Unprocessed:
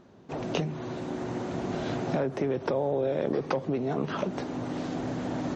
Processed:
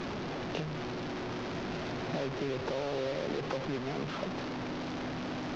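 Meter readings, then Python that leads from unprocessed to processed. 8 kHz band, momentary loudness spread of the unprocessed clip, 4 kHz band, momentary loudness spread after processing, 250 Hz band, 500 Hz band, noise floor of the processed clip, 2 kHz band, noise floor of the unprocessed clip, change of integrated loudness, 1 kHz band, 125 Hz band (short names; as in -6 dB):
n/a, 6 LU, +2.0 dB, 3 LU, -5.5 dB, -6.0 dB, -38 dBFS, +0.5 dB, -44 dBFS, -5.0 dB, -3.5 dB, -5.0 dB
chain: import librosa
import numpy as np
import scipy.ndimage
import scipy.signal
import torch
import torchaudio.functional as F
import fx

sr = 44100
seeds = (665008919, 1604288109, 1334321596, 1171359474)

y = fx.delta_mod(x, sr, bps=32000, step_db=-24.0)
y = fx.air_absorb(y, sr, metres=78.0)
y = y * librosa.db_to_amplitude(-7.0)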